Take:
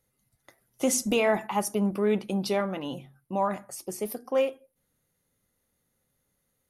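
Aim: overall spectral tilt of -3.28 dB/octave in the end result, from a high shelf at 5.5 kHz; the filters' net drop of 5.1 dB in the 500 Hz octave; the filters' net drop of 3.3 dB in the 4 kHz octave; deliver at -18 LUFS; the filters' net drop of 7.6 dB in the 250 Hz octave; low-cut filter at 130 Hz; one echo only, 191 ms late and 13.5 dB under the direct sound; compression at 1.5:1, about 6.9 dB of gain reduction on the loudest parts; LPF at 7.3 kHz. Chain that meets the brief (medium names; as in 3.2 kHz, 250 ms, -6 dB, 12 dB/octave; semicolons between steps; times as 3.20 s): high-pass 130 Hz; low-pass 7.3 kHz; peaking EQ 250 Hz -8.5 dB; peaking EQ 500 Hz -4 dB; peaking EQ 4 kHz -8.5 dB; treble shelf 5.5 kHz +8 dB; compression 1.5:1, threshold -43 dBFS; delay 191 ms -13.5 dB; trim +20 dB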